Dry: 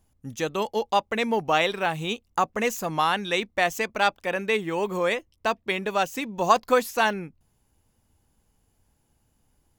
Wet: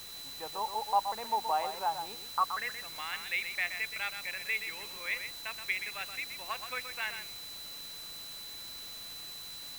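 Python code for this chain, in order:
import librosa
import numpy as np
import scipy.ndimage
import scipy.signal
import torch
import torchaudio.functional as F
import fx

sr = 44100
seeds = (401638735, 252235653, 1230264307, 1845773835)

p1 = fx.filter_sweep_bandpass(x, sr, from_hz=880.0, to_hz=2200.0, start_s=2.27, end_s=2.77, q=5.4)
p2 = fx.quant_dither(p1, sr, seeds[0], bits=6, dither='triangular')
p3 = p1 + (p2 * 10.0 ** (-9.5 / 20.0))
p4 = p3 + 10.0 ** (-43.0 / 20.0) * np.sin(2.0 * np.pi * 4000.0 * np.arange(len(p3)) / sr)
p5 = fx.low_shelf(p4, sr, hz=170.0, db=5.5)
p6 = p5 + fx.echo_single(p5, sr, ms=124, db=-8.5, dry=0)
y = p6 * 10.0 ** (-3.5 / 20.0)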